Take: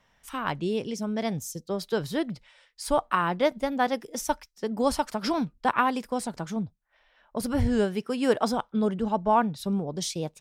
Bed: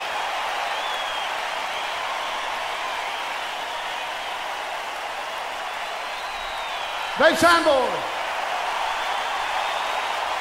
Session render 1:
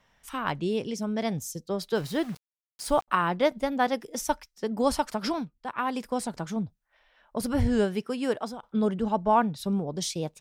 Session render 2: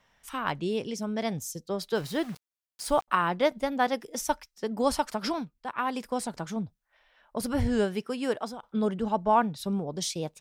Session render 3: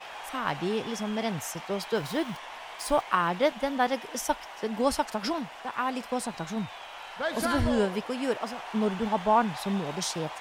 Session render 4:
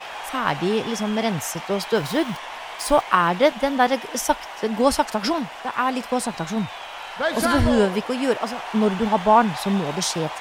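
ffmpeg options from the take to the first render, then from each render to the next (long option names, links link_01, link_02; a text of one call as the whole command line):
ffmpeg -i in.wav -filter_complex "[0:a]asettb=1/sr,asplit=3[link_01][link_02][link_03];[link_01]atrim=end=1.954[link_04];[link_02]atrim=start=1.95:end=3.08,asetpts=PTS-STARTPTS,afade=type=in:duration=0.004:curve=qsin,afade=type=out:start_time=1.126:duration=0.004:curve=qsin,aeval=exprs='val(0)*gte(abs(val(0)),0.00891)':channel_layout=same[link_05];[link_03]atrim=start=3.076[link_06];[link_04][link_05]acrossfade=duration=0.004:curve1=hsin:curve2=qsin[link_07];[link_07][link_06]acrossfade=duration=0.004:curve1=qsin:curve2=hsin,asplit=4[link_08][link_09][link_10][link_11];[link_08]atrim=end=5.52,asetpts=PTS-STARTPTS,afade=type=out:start_time=5.22:duration=0.3:silence=0.281838[link_12];[link_09]atrim=start=5.52:end=5.73,asetpts=PTS-STARTPTS,volume=-11dB[link_13];[link_10]atrim=start=5.73:end=8.63,asetpts=PTS-STARTPTS,afade=type=in:duration=0.3:silence=0.281838,afade=type=out:start_time=2.25:duration=0.65:silence=0.158489[link_14];[link_11]atrim=start=8.63,asetpts=PTS-STARTPTS,afade=type=in:duration=0.004:curve=hsin:silence=0.158489[link_15];[link_12][link_13][link_14][link_15]concat=n=4:v=0:a=1" out.wav
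ffmpeg -i in.wav -af "lowshelf=frequency=370:gain=-3" out.wav
ffmpeg -i in.wav -i bed.wav -filter_complex "[1:a]volume=-14.5dB[link_01];[0:a][link_01]amix=inputs=2:normalize=0" out.wav
ffmpeg -i in.wav -af "volume=7.5dB" out.wav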